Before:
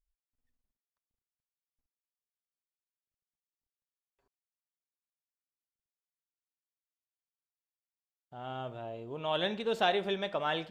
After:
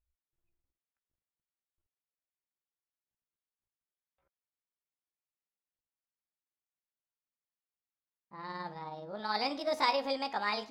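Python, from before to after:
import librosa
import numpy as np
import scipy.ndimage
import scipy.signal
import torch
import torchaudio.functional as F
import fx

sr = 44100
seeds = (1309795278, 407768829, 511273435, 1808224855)

y = fx.pitch_heads(x, sr, semitones=5.5)
y = fx.env_lowpass(y, sr, base_hz=2500.0, full_db=-33.0)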